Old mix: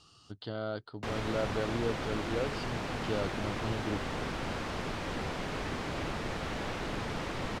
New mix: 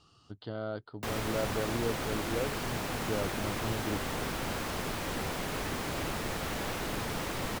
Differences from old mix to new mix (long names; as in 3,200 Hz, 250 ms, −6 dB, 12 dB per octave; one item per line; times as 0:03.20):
background: remove head-to-tape spacing loss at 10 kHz 22 dB
master: add high-shelf EQ 2,600 Hz −8 dB